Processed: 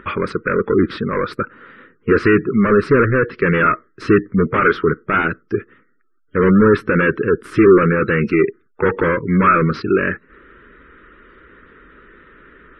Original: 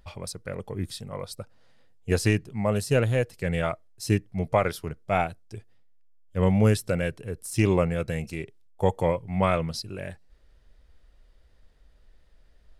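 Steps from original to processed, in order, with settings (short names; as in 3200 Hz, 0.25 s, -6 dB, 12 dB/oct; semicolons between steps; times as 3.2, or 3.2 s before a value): low shelf 250 Hz +4 dB; overdrive pedal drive 33 dB, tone 2300 Hz, clips at -7 dBFS; EQ curve 110 Hz 0 dB, 260 Hz +10 dB, 400 Hz +11 dB, 730 Hz -16 dB, 1300 Hz +13 dB, 7000 Hz -18 dB; spectral gate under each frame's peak -30 dB strong; gain -3.5 dB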